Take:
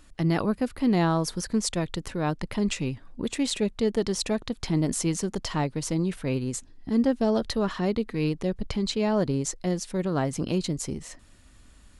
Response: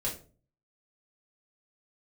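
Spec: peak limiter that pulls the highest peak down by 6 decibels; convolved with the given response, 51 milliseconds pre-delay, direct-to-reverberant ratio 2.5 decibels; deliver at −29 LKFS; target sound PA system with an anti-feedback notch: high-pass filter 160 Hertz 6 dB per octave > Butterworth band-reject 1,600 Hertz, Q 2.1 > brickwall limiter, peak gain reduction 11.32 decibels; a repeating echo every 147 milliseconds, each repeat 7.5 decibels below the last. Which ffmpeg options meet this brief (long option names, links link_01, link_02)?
-filter_complex "[0:a]alimiter=limit=-18dB:level=0:latency=1,aecho=1:1:147|294|441|588|735:0.422|0.177|0.0744|0.0312|0.0131,asplit=2[link_01][link_02];[1:a]atrim=start_sample=2205,adelay=51[link_03];[link_02][link_03]afir=irnorm=-1:irlink=0,volume=-6.5dB[link_04];[link_01][link_04]amix=inputs=2:normalize=0,highpass=frequency=160:poles=1,asuperstop=centerf=1600:order=8:qfactor=2.1,volume=3.5dB,alimiter=limit=-21dB:level=0:latency=1"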